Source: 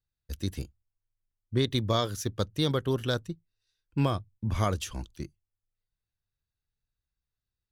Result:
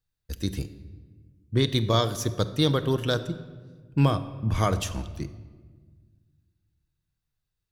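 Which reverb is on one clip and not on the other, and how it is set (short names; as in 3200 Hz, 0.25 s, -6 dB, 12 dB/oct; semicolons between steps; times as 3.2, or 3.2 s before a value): shoebox room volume 1400 m³, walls mixed, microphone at 0.53 m; gain +3.5 dB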